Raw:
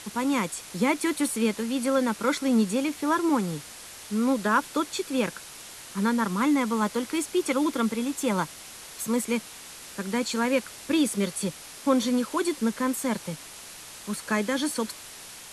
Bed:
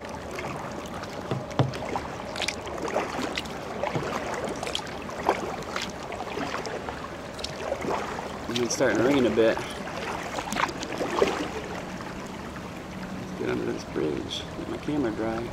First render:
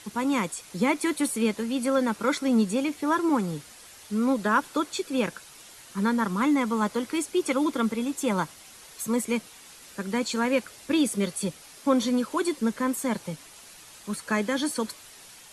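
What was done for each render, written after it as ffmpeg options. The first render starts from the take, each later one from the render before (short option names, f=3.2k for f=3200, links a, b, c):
-af "afftdn=nr=7:nf=-44"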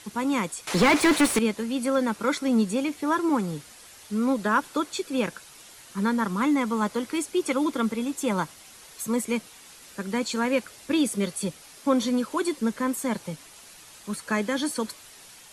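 -filter_complex "[0:a]asettb=1/sr,asplit=3[a][b][c];[a]atrim=end=0.674[d];[b]atrim=start=0.67:end=1.39,asetpts=PTS-STARTPTS,afade=t=in:d=0.004:c=qsin,afade=t=out:st=0.716:d=0.004:c=qsin,asplit=2[e][f];[f]highpass=f=720:p=1,volume=31dB,asoftclip=type=tanh:threshold=-10.5dB[g];[e][g]amix=inputs=2:normalize=0,lowpass=f=2.3k:p=1,volume=-6dB[h];[c]atrim=start=1.386[i];[d][h]acrossfade=d=0.004:c1=hsin:c2=qsin[j];[j][i]acrossfade=d=0.004:c1=qsin:c2=hsin"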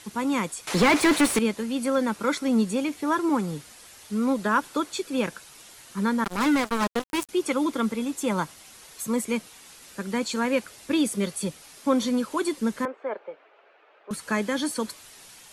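-filter_complex "[0:a]asettb=1/sr,asplit=3[a][b][c];[a]atrim=end=6.244[d];[b]atrim=start=6.24:end=7.29,asetpts=PTS-STARTPTS,afade=t=in:d=0.004:c=qsin,afade=t=out:st=1.046:d=0.004:c=qsin,acrusher=bits=3:mix=0:aa=0.5[e];[c]atrim=start=7.286[f];[d][e]acrossfade=d=0.004:c1=hsin:c2=qsin[g];[g][f]acrossfade=d=0.004:c1=qsin:c2=hsin,asettb=1/sr,asplit=3[h][i][j];[h]atrim=end=12.854[k];[i]atrim=start=12.85:end=14.11,asetpts=PTS-STARTPTS,afade=t=in:d=0.004:c=qsin,afade=t=out:st=1.256:d=0.004:c=qsin,highpass=f=420:w=0.5412,highpass=f=420:w=1.3066,equalizer=f=420:t=q:w=4:g=5,equalizer=f=600:t=q:w=4:g=4,equalizer=f=1k:t=q:w=4:g=-5,equalizer=f=1.9k:t=q:w=4:g=-6,lowpass=f=2.1k:w=0.5412,lowpass=f=2.1k:w=1.3066[l];[j]atrim=start=14.106[m];[k][l]acrossfade=d=0.004:c1=hsin:c2=qsin[n];[n][m]acrossfade=d=0.004:c1=qsin:c2=hsin"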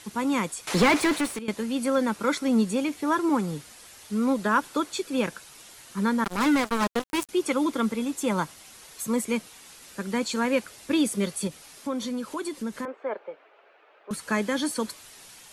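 -filter_complex "[0:a]asettb=1/sr,asplit=3[a][b][c];[a]atrim=end=11.474[d];[b]atrim=start=11.47:end=12.88,asetpts=PTS-STARTPTS,afade=t=in:d=0.004:c=qsin,afade=t=out:st=1.406:d=0.004:c=qsin,acompressor=threshold=-32dB:ratio=2:attack=3.2:release=140:knee=1:detection=peak[e];[c]atrim=start=12.876[f];[d][e]acrossfade=d=0.004:c1=hsin:c2=qsin[g];[g][f]acrossfade=d=0.004:c1=qsin:c2=hsin,asplit=2[h][i];[h]atrim=end=1.48,asetpts=PTS-STARTPTS,afade=t=out:st=0.82:d=0.66:silence=0.149624[j];[i]atrim=start=1.48,asetpts=PTS-STARTPTS,afade=t=in:d=0.004:c=hsin:silence=0.149624[k];[j][k]concat=n=2:v=0:a=1"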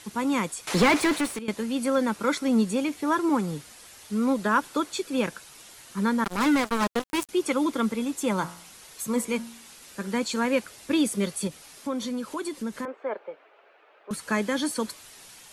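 -filter_complex "[0:a]asettb=1/sr,asplit=3[a][b][c];[a]atrim=end=8.364[d];[b]atrim=start=8.36:end=10.14,asetpts=PTS-STARTPTS,afade=t=in:d=0.004:c=qsin,afade=t=out:st=1.776:d=0.004:c=qsin,bandreject=f=57.79:t=h:w=4,bandreject=f=115.58:t=h:w=4,bandreject=f=173.37:t=h:w=4,bandreject=f=231.16:t=h:w=4,bandreject=f=288.95:t=h:w=4,bandreject=f=346.74:t=h:w=4,bandreject=f=404.53:t=h:w=4,bandreject=f=462.32:t=h:w=4,bandreject=f=520.11:t=h:w=4,bandreject=f=577.9:t=h:w=4,bandreject=f=635.69:t=h:w=4,bandreject=f=693.48:t=h:w=4,bandreject=f=751.27:t=h:w=4,bandreject=f=809.06:t=h:w=4,bandreject=f=866.85:t=h:w=4,bandreject=f=924.64:t=h:w=4,bandreject=f=982.43:t=h:w=4,bandreject=f=1.04022k:t=h:w=4,bandreject=f=1.09801k:t=h:w=4,bandreject=f=1.1558k:t=h:w=4,bandreject=f=1.21359k:t=h:w=4,bandreject=f=1.27138k:t=h:w=4,bandreject=f=1.32917k:t=h:w=4,bandreject=f=1.38696k:t=h:w=4,bandreject=f=1.44475k:t=h:w=4,bandreject=f=1.50254k:t=h:w=4,bandreject=f=1.56033k:t=h:w=4,bandreject=f=1.61812k:t=h:w=4,bandreject=f=1.67591k:t=h:w=4,bandreject=f=1.7337k:t=h:w=4,bandreject=f=1.79149k:t=h:w=4,bandreject=f=1.84928k:t=h:w=4,bandreject=f=1.90707k:t=h:w=4,bandreject=f=1.96486k:t=h:w=4,bandreject=f=2.02265k:t=h:w=4[e];[c]atrim=start=10.136[f];[d][e]acrossfade=d=0.004:c1=hsin:c2=qsin[g];[g][f]acrossfade=d=0.004:c1=qsin:c2=hsin"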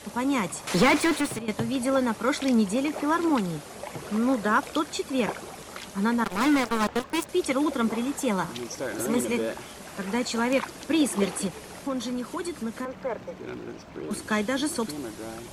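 -filter_complex "[1:a]volume=-9dB[a];[0:a][a]amix=inputs=2:normalize=0"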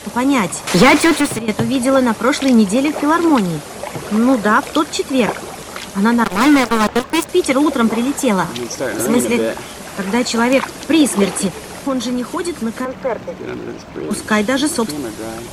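-af "volume=11dB,alimiter=limit=-2dB:level=0:latency=1"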